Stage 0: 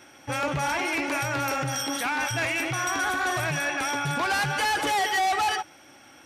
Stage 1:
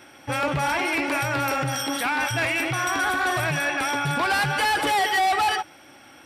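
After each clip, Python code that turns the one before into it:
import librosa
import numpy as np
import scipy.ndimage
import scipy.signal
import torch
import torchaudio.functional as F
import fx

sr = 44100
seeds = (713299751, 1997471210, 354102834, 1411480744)

y = fx.peak_eq(x, sr, hz=6400.0, db=-9.0, octaves=0.28)
y = y * 10.0 ** (3.0 / 20.0)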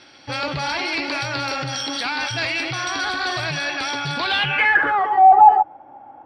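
y = fx.filter_sweep_lowpass(x, sr, from_hz=4500.0, to_hz=820.0, start_s=4.19, end_s=5.25, q=7.8)
y = y * 10.0 ** (-2.0 / 20.0)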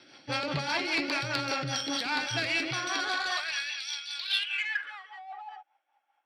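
y = fx.filter_sweep_highpass(x, sr, from_hz=140.0, to_hz=3200.0, start_s=2.71, end_s=3.79, q=0.94)
y = fx.cheby_harmonics(y, sr, harmonics=(3,), levels_db=(-18,), full_scale_db=-10.0)
y = fx.rotary(y, sr, hz=5.0)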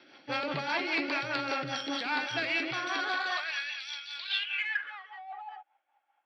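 y = fx.bandpass_edges(x, sr, low_hz=200.0, high_hz=3400.0)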